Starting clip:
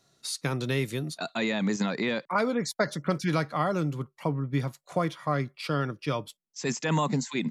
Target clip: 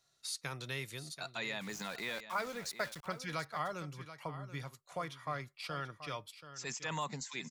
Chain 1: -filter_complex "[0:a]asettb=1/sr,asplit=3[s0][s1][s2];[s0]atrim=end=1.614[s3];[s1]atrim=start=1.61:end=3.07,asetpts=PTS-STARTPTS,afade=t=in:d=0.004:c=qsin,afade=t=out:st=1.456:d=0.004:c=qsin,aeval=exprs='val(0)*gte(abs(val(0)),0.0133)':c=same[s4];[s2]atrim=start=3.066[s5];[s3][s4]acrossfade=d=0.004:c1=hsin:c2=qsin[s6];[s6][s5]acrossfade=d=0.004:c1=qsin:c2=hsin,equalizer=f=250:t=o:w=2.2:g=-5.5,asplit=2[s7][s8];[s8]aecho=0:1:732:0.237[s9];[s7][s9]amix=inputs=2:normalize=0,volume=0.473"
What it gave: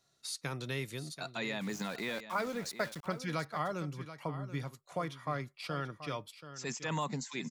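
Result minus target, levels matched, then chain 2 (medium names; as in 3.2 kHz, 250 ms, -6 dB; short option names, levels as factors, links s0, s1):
250 Hz band +5.0 dB
-filter_complex "[0:a]asettb=1/sr,asplit=3[s0][s1][s2];[s0]atrim=end=1.614[s3];[s1]atrim=start=1.61:end=3.07,asetpts=PTS-STARTPTS,afade=t=in:d=0.004:c=qsin,afade=t=out:st=1.456:d=0.004:c=qsin,aeval=exprs='val(0)*gte(abs(val(0)),0.0133)':c=same[s4];[s2]atrim=start=3.066[s5];[s3][s4]acrossfade=d=0.004:c1=hsin:c2=qsin[s6];[s6][s5]acrossfade=d=0.004:c1=qsin:c2=hsin,equalizer=f=250:t=o:w=2.2:g=-14,asplit=2[s7][s8];[s8]aecho=0:1:732:0.237[s9];[s7][s9]amix=inputs=2:normalize=0,volume=0.473"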